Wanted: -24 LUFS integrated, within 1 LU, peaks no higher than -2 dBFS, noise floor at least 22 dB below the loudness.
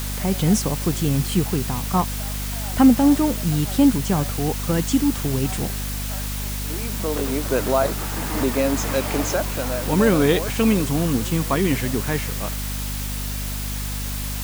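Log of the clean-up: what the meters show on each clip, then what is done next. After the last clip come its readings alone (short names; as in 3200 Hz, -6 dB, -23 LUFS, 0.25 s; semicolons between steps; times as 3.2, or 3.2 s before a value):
hum 50 Hz; harmonics up to 250 Hz; hum level -26 dBFS; noise floor -27 dBFS; noise floor target -44 dBFS; loudness -21.5 LUFS; peak -2.5 dBFS; loudness target -24.0 LUFS
-> de-hum 50 Hz, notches 5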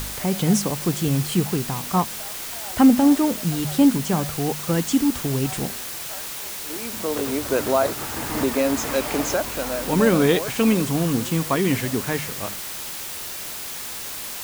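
hum none; noise floor -33 dBFS; noise floor target -45 dBFS
-> denoiser 12 dB, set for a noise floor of -33 dBFS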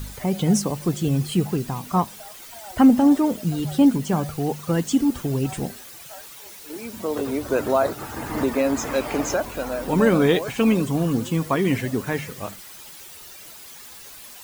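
noise floor -42 dBFS; noise floor target -44 dBFS
-> denoiser 6 dB, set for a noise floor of -42 dBFS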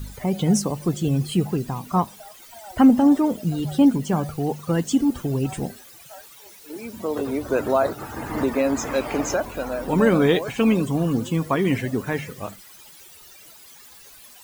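noise floor -47 dBFS; loudness -22.0 LUFS; peak -4.5 dBFS; loudness target -24.0 LUFS
-> gain -2 dB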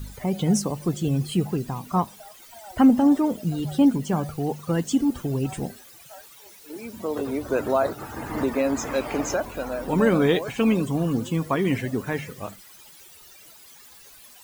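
loudness -24.0 LUFS; peak -6.5 dBFS; noise floor -49 dBFS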